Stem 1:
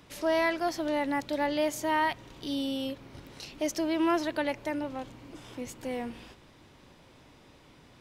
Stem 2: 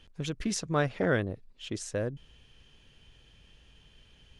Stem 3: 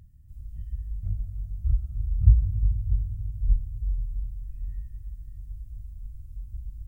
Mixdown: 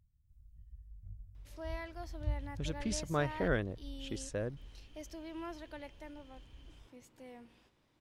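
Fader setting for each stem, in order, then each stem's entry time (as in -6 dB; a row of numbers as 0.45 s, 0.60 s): -17.5 dB, -5.5 dB, -19.5 dB; 1.35 s, 2.40 s, 0.00 s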